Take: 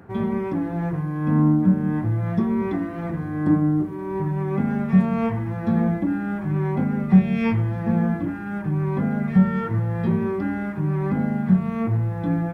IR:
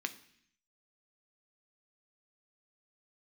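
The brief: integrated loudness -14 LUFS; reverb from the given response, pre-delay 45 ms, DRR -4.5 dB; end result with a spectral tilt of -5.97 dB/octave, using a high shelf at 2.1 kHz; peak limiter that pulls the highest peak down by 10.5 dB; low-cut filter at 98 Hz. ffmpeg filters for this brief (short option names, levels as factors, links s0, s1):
-filter_complex "[0:a]highpass=98,highshelf=f=2100:g=5.5,alimiter=limit=0.168:level=0:latency=1,asplit=2[s0][s1];[1:a]atrim=start_sample=2205,adelay=45[s2];[s1][s2]afir=irnorm=-1:irlink=0,volume=1.33[s3];[s0][s3]amix=inputs=2:normalize=0,volume=1.88"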